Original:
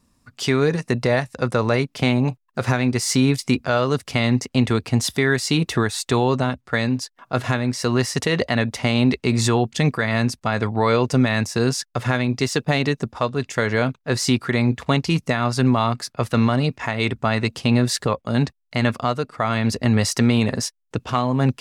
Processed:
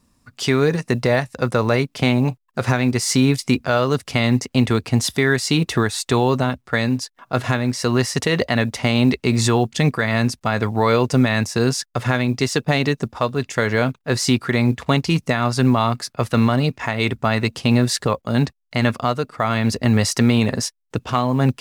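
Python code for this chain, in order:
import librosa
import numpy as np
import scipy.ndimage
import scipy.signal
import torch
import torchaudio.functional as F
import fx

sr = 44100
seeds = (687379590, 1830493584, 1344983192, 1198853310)

y = fx.quant_companded(x, sr, bits=8)
y = y * librosa.db_to_amplitude(1.5)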